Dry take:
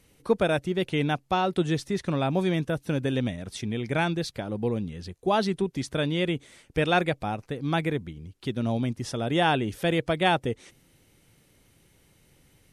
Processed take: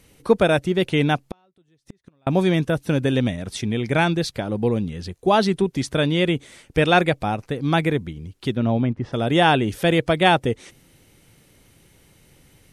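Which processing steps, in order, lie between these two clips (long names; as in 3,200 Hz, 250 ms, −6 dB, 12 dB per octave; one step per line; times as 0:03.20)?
0:01.17–0:02.27: gate with flip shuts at −23 dBFS, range −42 dB
0:08.55–0:09.12: low-pass filter 3,300 Hz → 1,500 Hz 12 dB per octave
level +6.5 dB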